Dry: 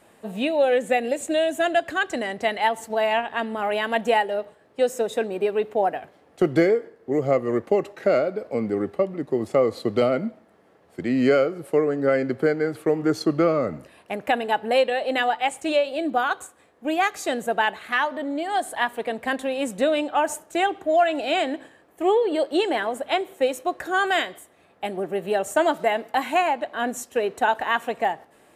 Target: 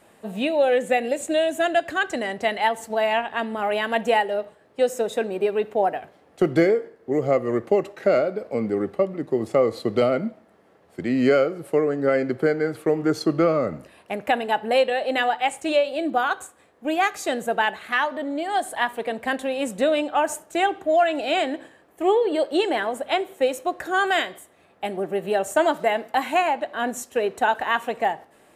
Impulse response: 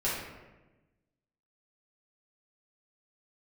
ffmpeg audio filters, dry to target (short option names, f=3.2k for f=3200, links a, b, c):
-filter_complex "[0:a]asplit=2[a][b];[1:a]atrim=start_sample=2205,atrim=end_sample=4410[c];[b][c]afir=irnorm=-1:irlink=0,volume=-25dB[d];[a][d]amix=inputs=2:normalize=0"